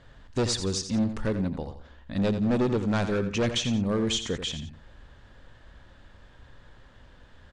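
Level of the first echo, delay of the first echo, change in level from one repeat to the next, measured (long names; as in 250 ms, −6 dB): −10.0 dB, 86 ms, −9.5 dB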